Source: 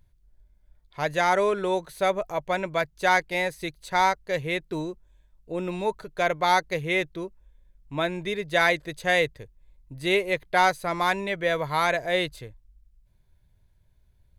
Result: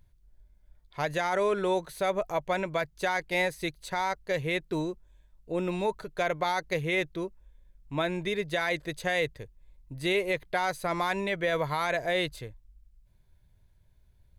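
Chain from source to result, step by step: peak limiter -18.5 dBFS, peak gain reduction 10.5 dB

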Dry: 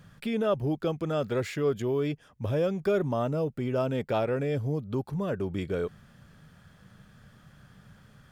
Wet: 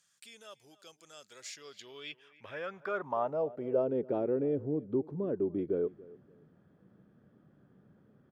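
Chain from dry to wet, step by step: feedback delay 285 ms, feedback 23%, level -21 dB; band-pass sweep 7.2 kHz -> 340 Hz, 1.33–4.07 s; trim +3.5 dB

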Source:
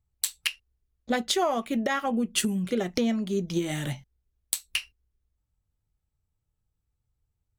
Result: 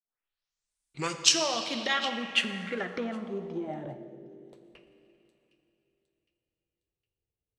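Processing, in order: tape start-up on the opening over 1.59 s; tilt EQ +3 dB/octave; on a send: feedback echo behind a high-pass 761 ms, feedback 40%, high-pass 4.2 kHz, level -8.5 dB; on the sum: Schroeder reverb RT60 3.2 s, DRR 7 dB; low-pass sweep 11 kHz -> 480 Hz, 0.67–4.24 s; trim -4 dB

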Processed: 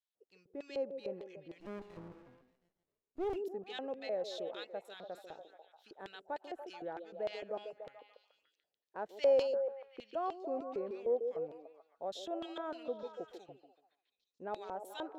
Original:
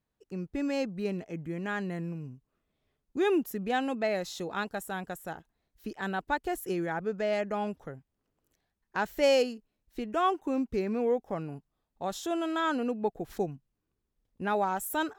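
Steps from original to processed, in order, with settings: LFO band-pass square 3.3 Hz 540–3600 Hz; repeats whose band climbs or falls 144 ms, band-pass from 370 Hz, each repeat 0.7 oct, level -4.5 dB; 1.60–3.36 s: sliding maximum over 33 samples; trim -3 dB

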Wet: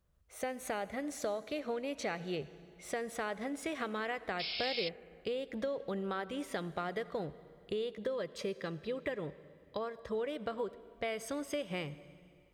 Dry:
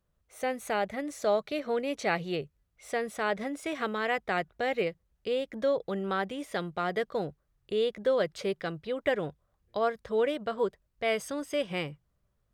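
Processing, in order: compression, threshold -34 dBFS, peak gain reduction 12 dB; 7.92–10.15 s: comb of notches 740 Hz; reverberation RT60 2.4 s, pre-delay 60 ms, DRR 16 dB; 4.39–4.89 s: painted sound noise 2.1–5.4 kHz -39 dBFS; peaking EQ 65 Hz +5 dB 1.2 oct

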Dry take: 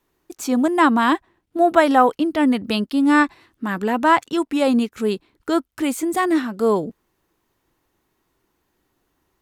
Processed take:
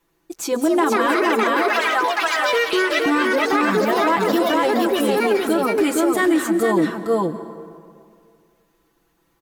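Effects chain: 1.57–3.06 s: Chebyshev high-pass 1.3 kHz, order 2; comb 6 ms, depth 86%; ever faster or slower copies 302 ms, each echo +4 st, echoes 3; on a send: delay 466 ms -3 dB; on the sum: peak limiter -10 dBFS, peak gain reduction 11.5 dB; plate-style reverb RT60 2.2 s, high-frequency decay 0.55×, pre-delay 120 ms, DRR 12.5 dB

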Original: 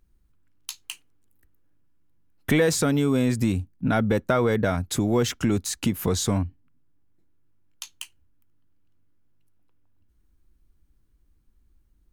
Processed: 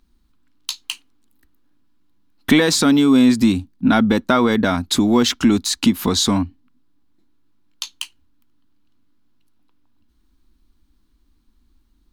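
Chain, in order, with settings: graphic EQ 125/250/500/1000/4000 Hz -9/+11/-5/+7/+11 dB; trim +3 dB

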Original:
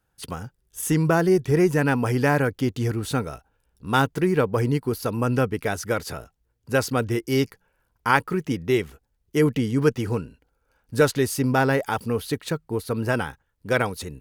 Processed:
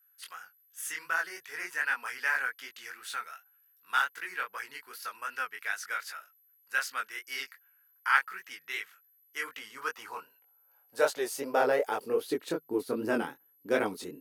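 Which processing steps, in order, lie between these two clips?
high-pass sweep 1.6 kHz -> 290 Hz, 9.21–12.71 s; whistle 12 kHz -55 dBFS; chorus 2.6 Hz, delay 18.5 ms, depth 5.2 ms; trim -5 dB

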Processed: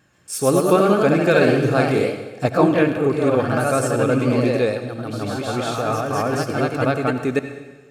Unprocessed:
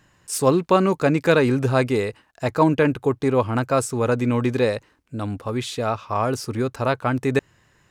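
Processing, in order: vibrato 6.4 Hz 39 cents; ever faster or slower copies 130 ms, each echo +1 st, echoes 3; comb of notches 970 Hz; on a send: reverberation RT60 1.2 s, pre-delay 63 ms, DRR 8.5 dB

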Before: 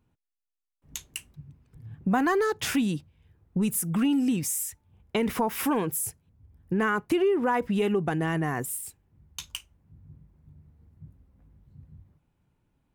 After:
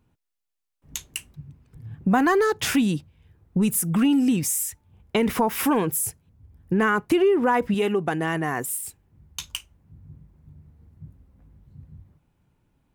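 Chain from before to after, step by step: 7.74–8.83 s: bass shelf 180 Hz -10.5 dB; trim +4.5 dB

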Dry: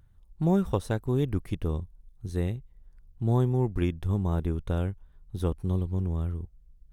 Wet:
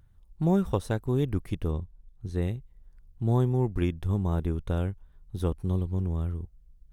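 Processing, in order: 1.71–2.42 s: treble shelf 7.8 kHz -12 dB

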